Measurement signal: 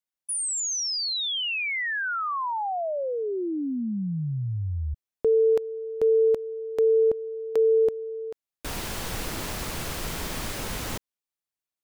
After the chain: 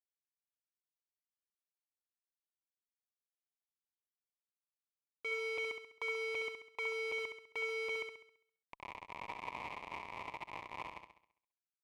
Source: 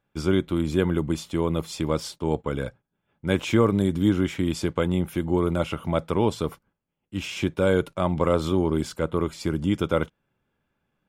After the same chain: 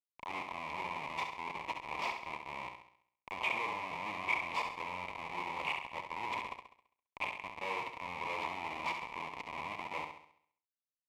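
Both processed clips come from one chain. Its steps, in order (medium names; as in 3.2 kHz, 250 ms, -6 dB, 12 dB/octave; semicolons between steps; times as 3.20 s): transient shaper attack -7 dB, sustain +10 dB; Schmitt trigger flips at -23.5 dBFS; two resonant band-passes 1.5 kHz, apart 1.2 oct; on a send: flutter echo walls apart 11.5 m, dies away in 0.62 s; on the sum: trim +2.5 dB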